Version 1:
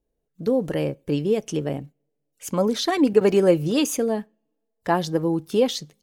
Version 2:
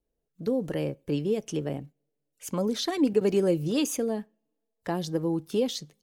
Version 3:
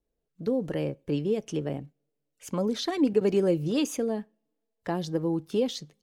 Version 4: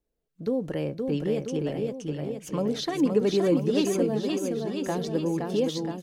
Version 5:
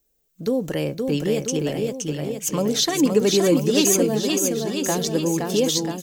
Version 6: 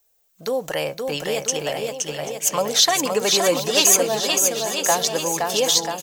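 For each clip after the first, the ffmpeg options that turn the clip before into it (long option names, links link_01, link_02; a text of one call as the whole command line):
ffmpeg -i in.wav -filter_complex "[0:a]acrossover=split=480|3000[link_01][link_02][link_03];[link_02]acompressor=threshold=-29dB:ratio=6[link_04];[link_01][link_04][link_03]amix=inputs=3:normalize=0,volume=-4.5dB" out.wav
ffmpeg -i in.wav -af "highshelf=frequency=7500:gain=-9" out.wav
ffmpeg -i in.wav -af "aecho=1:1:520|988|1409|1788|2129:0.631|0.398|0.251|0.158|0.1" out.wav
ffmpeg -i in.wav -af "aexciter=amount=2:drive=1.9:freq=6100,highshelf=frequency=2800:gain=11.5,volume=4.5dB" out.wav
ffmpeg -i in.wav -af "lowshelf=frequency=470:width_type=q:width=1.5:gain=-13.5,aecho=1:1:787:0.15,volume=5.5dB" out.wav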